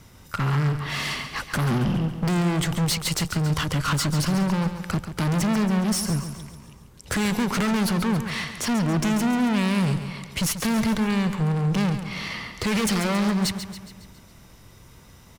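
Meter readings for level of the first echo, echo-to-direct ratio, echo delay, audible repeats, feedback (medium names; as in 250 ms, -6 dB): -10.0 dB, -8.5 dB, 138 ms, 5, 53%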